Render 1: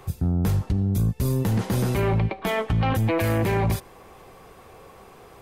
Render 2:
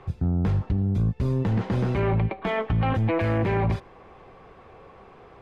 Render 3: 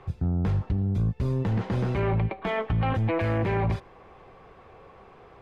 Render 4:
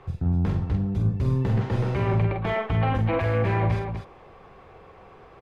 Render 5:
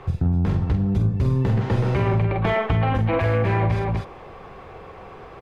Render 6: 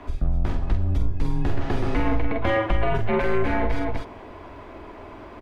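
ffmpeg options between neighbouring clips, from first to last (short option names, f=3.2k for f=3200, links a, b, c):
-af "lowpass=2.8k,volume=-1dB"
-af "equalizer=f=250:w=1.5:g=-2,volume=-1.5dB"
-af "aecho=1:1:46.65|247.8:0.562|0.501"
-af "acompressor=threshold=-25dB:ratio=6,volume=8dB"
-af "afreqshift=-110"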